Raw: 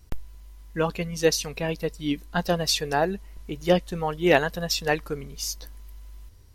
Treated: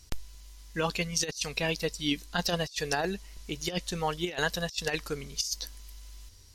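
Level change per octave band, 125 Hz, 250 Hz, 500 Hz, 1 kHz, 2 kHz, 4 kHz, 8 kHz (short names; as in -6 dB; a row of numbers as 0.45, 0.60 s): -6.0, -7.0, -9.0, -6.5, -3.5, -2.5, -2.0 dB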